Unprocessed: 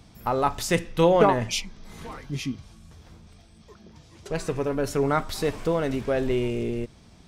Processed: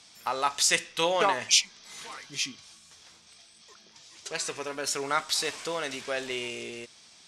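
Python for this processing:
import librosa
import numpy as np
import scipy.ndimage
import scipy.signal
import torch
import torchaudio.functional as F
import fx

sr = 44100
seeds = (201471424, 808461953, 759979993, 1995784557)

y = fx.weighting(x, sr, curve='ITU-R 468')
y = y * 10.0 ** (-3.0 / 20.0)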